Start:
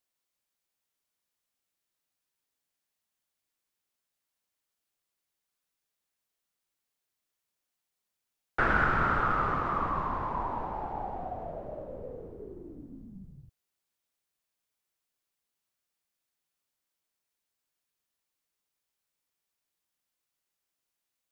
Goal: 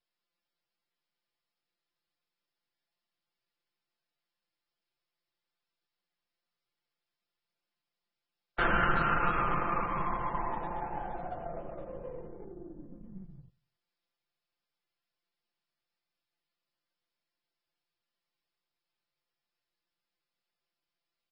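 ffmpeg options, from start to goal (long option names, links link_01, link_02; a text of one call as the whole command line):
ffmpeg -i in.wav -filter_complex "[0:a]aeval=exprs='if(lt(val(0),0),0.447*val(0),val(0))':channel_layout=same,asplit=3[link_01][link_02][link_03];[link_01]afade=type=out:start_time=12.43:duration=0.02[link_04];[link_02]lowpass=frequency=1100:poles=1,afade=type=in:start_time=12.43:duration=0.02,afade=type=out:start_time=13.02:duration=0.02[link_05];[link_03]afade=type=in:start_time=13.02:duration=0.02[link_06];[link_04][link_05][link_06]amix=inputs=3:normalize=0,aecho=1:1:5.8:0.64,asplit=2[link_07][link_08];[link_08]adelay=91,lowpass=frequency=830:poles=1,volume=-22.5dB,asplit=2[link_09][link_10];[link_10]adelay=91,lowpass=frequency=830:poles=1,volume=0.42,asplit=2[link_11][link_12];[link_12]adelay=91,lowpass=frequency=830:poles=1,volume=0.42[link_13];[link_07][link_09][link_11][link_13]amix=inputs=4:normalize=0" -ar 22050 -c:a libmp3lame -b:a 16k out.mp3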